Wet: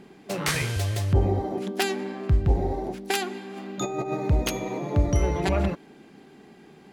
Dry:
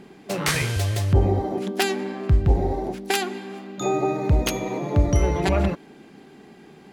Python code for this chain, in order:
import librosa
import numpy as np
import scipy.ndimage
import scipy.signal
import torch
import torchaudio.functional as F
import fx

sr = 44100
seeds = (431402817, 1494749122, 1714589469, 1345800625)

y = fx.over_compress(x, sr, threshold_db=-25.0, ratio=-0.5, at=(3.56, 4.14), fade=0.02)
y = y * librosa.db_to_amplitude(-3.0)